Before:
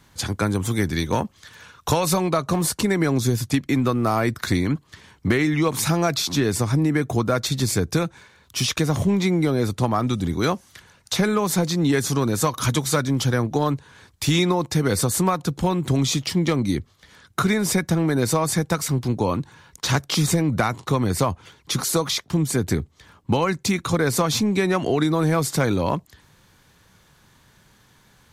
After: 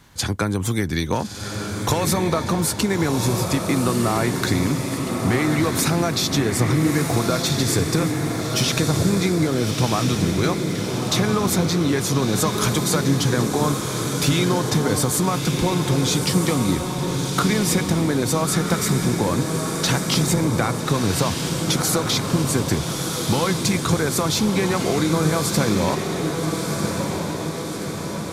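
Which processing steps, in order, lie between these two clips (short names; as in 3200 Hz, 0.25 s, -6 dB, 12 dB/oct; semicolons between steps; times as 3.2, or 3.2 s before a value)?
compressor, threshold -21 dBFS, peak gain reduction 7 dB; on a send: diffused feedback echo 1.308 s, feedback 62%, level -4 dB; on the sum: gain +3.5 dB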